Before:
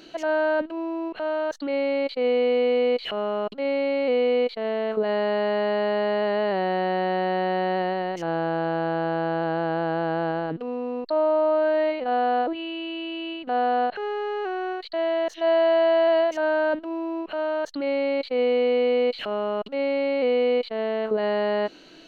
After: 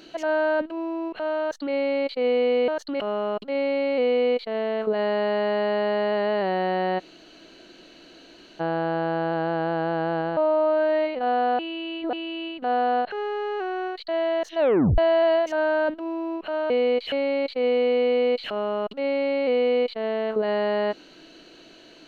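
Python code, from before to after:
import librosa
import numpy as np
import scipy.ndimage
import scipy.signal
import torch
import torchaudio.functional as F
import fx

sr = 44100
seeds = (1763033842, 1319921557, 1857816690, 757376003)

y = fx.edit(x, sr, fx.swap(start_s=2.68, length_s=0.42, other_s=17.55, other_length_s=0.32),
    fx.room_tone_fill(start_s=7.09, length_s=1.61, crossfade_s=0.02),
    fx.cut(start_s=10.47, length_s=0.75),
    fx.reverse_span(start_s=12.44, length_s=0.54),
    fx.tape_stop(start_s=15.44, length_s=0.39), tone=tone)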